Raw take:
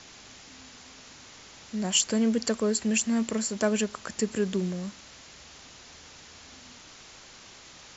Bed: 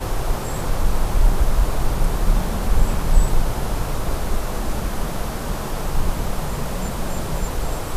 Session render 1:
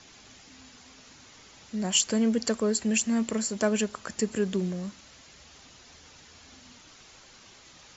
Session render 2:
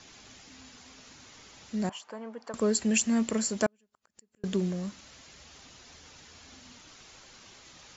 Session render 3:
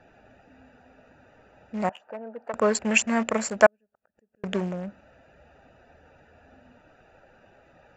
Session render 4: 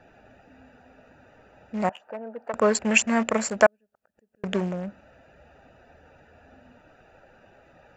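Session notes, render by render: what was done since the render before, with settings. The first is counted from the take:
broadband denoise 6 dB, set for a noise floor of −50 dBFS
0:01.89–0:02.54: resonant band-pass 940 Hz, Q 2.5; 0:03.66–0:04.44: gate with flip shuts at −24 dBFS, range −42 dB
adaptive Wiener filter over 41 samples; flat-topped bell 1,200 Hz +13.5 dB 2.7 octaves
level +1.5 dB; brickwall limiter −3 dBFS, peak gain reduction 3 dB

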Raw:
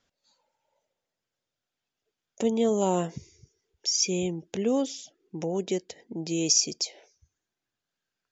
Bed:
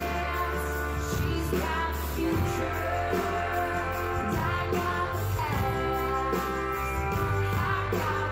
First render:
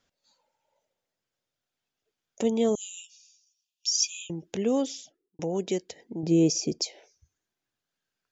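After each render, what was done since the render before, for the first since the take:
0:02.75–0:04.30: linear-phase brick-wall high-pass 2,400 Hz
0:04.94–0:05.39: fade out and dull
0:06.23–0:06.82: tilt shelving filter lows +9 dB, about 1,300 Hz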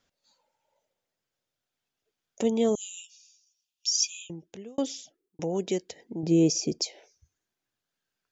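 0:03.98–0:04.78: fade out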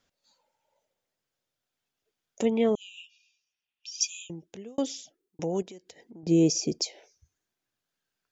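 0:02.45–0:04.01: low-pass with resonance 2,300 Hz, resonance Q 2.3
0:05.62–0:06.27: downward compressor 4 to 1, threshold −46 dBFS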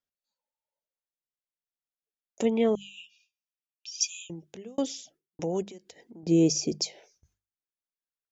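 noise gate with hold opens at −54 dBFS
mains-hum notches 50/100/150/200 Hz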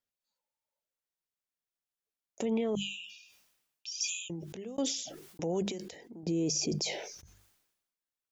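brickwall limiter −23.5 dBFS, peak gain reduction 10.5 dB
level that may fall only so fast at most 56 dB per second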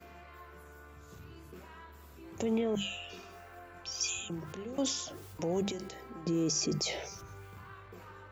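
mix in bed −22.5 dB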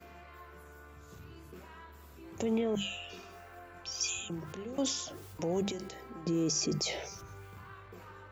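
no processing that can be heard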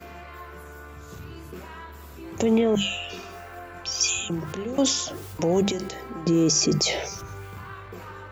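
level +10.5 dB

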